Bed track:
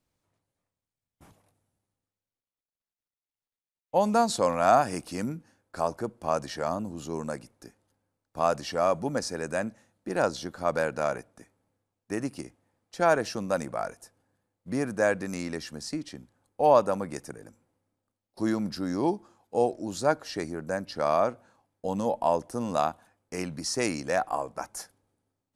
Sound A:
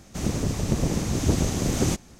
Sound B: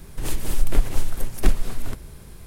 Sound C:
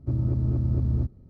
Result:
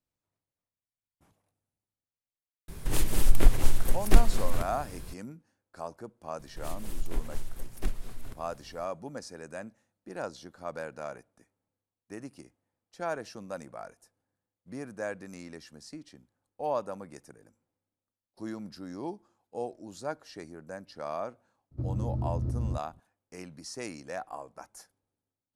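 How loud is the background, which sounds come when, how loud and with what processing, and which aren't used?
bed track -11 dB
2.68 add B -0.5 dB
6.39 add B -13 dB
21.71 add C -7 dB
not used: A

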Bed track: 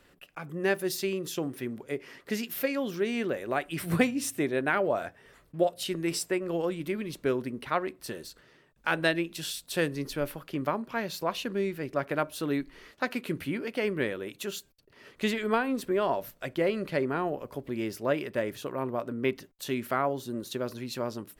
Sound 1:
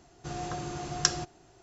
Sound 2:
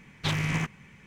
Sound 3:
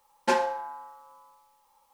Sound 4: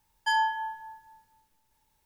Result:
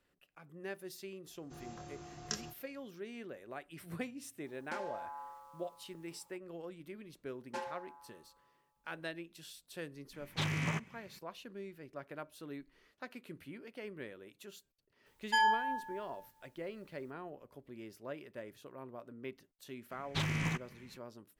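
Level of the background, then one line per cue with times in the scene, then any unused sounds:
bed track -16.5 dB
1.26 add 1 -15.5 dB + doubler 26 ms -3.5 dB
4.44 add 3 -4 dB + compressor, threshold -37 dBFS
7.26 add 3 -17.5 dB
10.13 add 2 -6.5 dB + HPF 81 Hz
15.06 add 4 -3 dB
19.91 add 2 -6.5 dB

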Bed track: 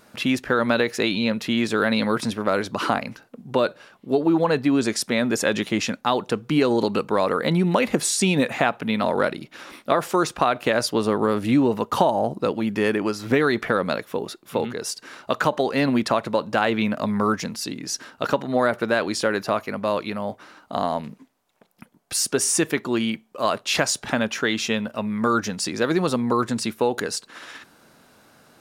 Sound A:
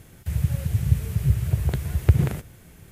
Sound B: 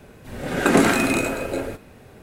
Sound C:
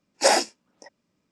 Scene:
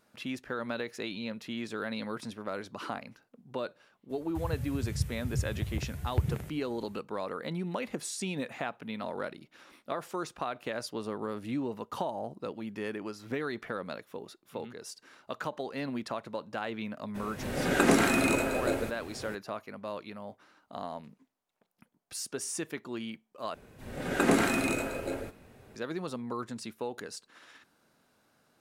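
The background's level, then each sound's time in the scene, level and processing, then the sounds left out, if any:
bed track -15 dB
4.09 add A -11.5 dB, fades 0.02 s
17.14 add B -5.5 dB, fades 0.02 s + three-band squash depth 40%
23.54 replace with B -8.5 dB
not used: C

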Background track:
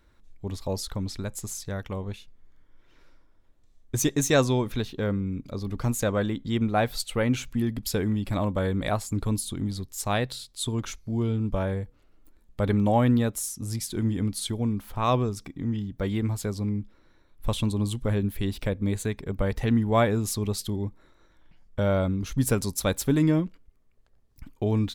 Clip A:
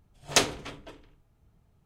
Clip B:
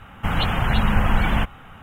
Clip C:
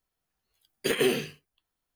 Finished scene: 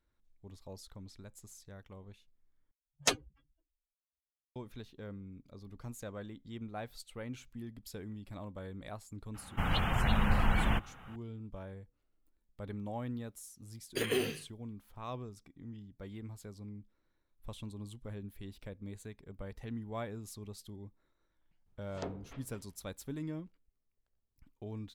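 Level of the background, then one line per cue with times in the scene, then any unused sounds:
background track -18.5 dB
2.71 replace with A -5 dB + per-bin expansion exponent 3
9.34 add B -9.5 dB
13.11 add C -7.5 dB
21.66 add A -12.5 dB + treble ducked by the level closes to 750 Hz, closed at -26.5 dBFS

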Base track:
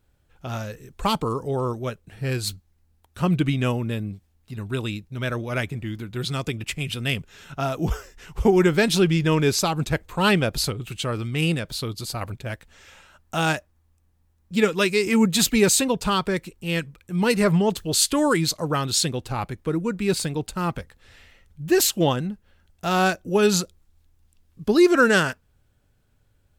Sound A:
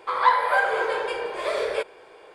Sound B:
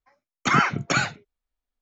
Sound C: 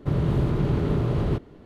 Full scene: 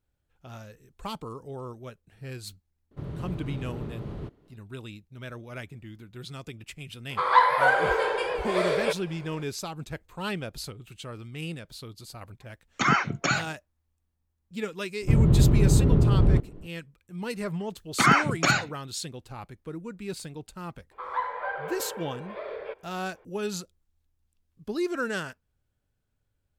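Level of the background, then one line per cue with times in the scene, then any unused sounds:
base track -13 dB
2.91 add C -13 dB
7.1 add A + record warp 78 rpm, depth 100 cents
12.34 add B -3 dB
15.02 add C -5 dB + tilt -3 dB/oct
17.53 add B
20.91 add A -9.5 dB + air absorption 390 m

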